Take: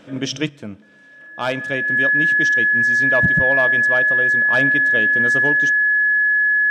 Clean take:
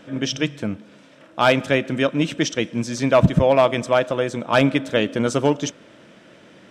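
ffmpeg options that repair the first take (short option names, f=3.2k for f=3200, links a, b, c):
-af "bandreject=f=1.7k:w=30,asetnsamples=n=441:p=0,asendcmd='0.49 volume volume 6.5dB',volume=0dB"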